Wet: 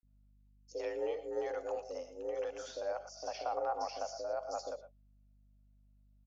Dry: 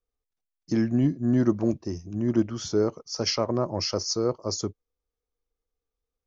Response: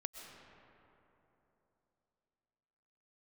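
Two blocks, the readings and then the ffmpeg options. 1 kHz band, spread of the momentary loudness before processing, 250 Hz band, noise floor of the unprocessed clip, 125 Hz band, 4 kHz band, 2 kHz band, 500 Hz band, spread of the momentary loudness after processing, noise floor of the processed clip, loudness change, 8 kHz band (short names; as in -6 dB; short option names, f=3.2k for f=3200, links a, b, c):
-1.5 dB, 7 LU, -29.0 dB, under -85 dBFS, under -35 dB, -19.0 dB, -7.5 dB, -8.0 dB, 7 LU, -66 dBFS, -13.0 dB, n/a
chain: -filter_complex "[0:a]lowshelf=f=240:t=q:w=3:g=-10.5,acrossover=split=1100[a][b];[a]alimiter=limit=-18.5dB:level=0:latency=1[c];[b]acompressor=threshold=-40dB:ratio=5[d];[c][d]amix=inputs=2:normalize=0,equalizer=f=315:t=o:w=0.33:g=-4,equalizer=f=630:t=o:w=0.33:g=5,equalizer=f=2.5k:t=o:w=0.33:g=7,equalizer=f=4k:t=o:w=0.33:g=5,afreqshift=170,aeval=exprs='val(0)+0.00112*(sin(2*PI*50*n/s)+sin(2*PI*2*50*n/s)/2+sin(2*PI*3*50*n/s)/3+sin(2*PI*4*50*n/s)/4+sin(2*PI*5*50*n/s)/5)':c=same,acrossover=split=530|5500[e][f][g];[e]adelay=30[h];[f]adelay=80[i];[h][i][g]amix=inputs=3:normalize=0[j];[1:a]atrim=start_sample=2205,atrim=end_sample=6174,asetrate=48510,aresample=44100[k];[j][k]afir=irnorm=-1:irlink=0,volume=-3dB"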